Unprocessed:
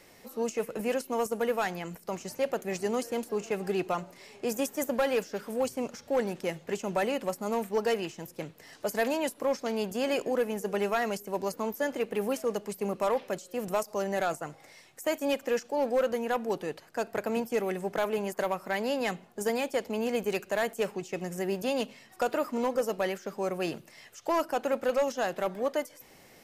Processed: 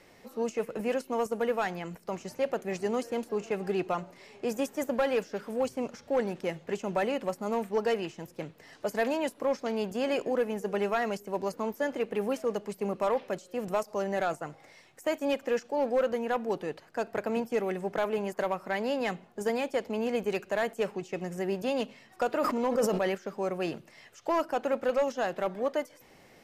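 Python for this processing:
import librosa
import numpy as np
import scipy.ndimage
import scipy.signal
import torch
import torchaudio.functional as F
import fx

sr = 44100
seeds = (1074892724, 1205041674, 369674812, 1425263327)

y = fx.lowpass(x, sr, hz=3800.0, slope=6)
y = fx.sustainer(y, sr, db_per_s=28.0, at=(22.29, 23.15))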